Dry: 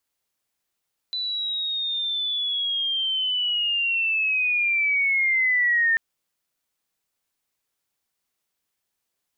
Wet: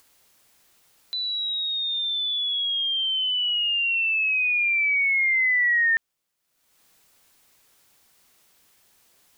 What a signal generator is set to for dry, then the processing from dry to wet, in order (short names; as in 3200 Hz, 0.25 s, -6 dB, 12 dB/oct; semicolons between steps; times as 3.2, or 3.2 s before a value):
chirp linear 4000 Hz -> 1800 Hz -25 dBFS -> -17 dBFS 4.84 s
upward compressor, threshold -44 dBFS